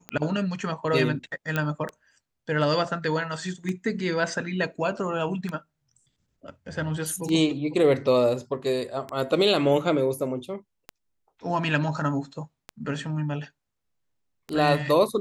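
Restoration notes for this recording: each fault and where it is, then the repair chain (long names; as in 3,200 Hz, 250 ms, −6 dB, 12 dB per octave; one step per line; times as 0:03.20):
scratch tick 33 1/3 rpm −18 dBFS
0:01.56: click −12 dBFS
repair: click removal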